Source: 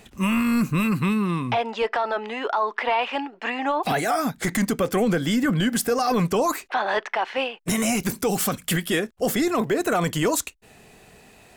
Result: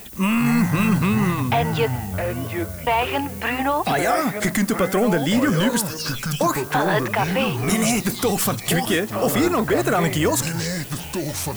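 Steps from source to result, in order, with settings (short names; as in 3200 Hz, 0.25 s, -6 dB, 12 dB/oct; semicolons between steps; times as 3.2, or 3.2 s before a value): 5.8–6.41 inverse Chebyshev band-stop 120–910 Hz, stop band 60 dB; in parallel at -0.5 dB: compressor, threshold -30 dBFS, peak gain reduction 11.5 dB; 1.89–2.87 on the sum: vocal tract filter i; added noise violet -41 dBFS; on a send at -23.5 dB: reverb RT60 4.6 s, pre-delay 3 ms; on the sum: echoes that change speed 0.155 s, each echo -5 st, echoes 3, each echo -6 dB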